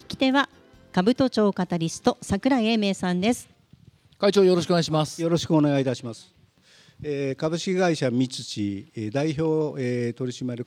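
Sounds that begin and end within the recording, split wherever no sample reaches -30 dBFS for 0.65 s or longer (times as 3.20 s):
4.22–6.12 s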